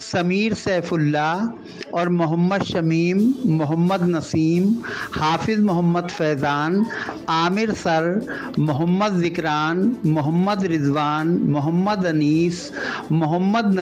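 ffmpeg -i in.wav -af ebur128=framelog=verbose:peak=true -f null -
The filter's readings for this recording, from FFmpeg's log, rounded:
Integrated loudness:
  I:         -20.4 LUFS
  Threshold: -30.4 LUFS
Loudness range:
  LRA:         1.2 LU
  Threshold: -40.3 LUFS
  LRA low:   -20.9 LUFS
  LRA high:  -19.7 LUFS
True peak:
  Peak:       -9.1 dBFS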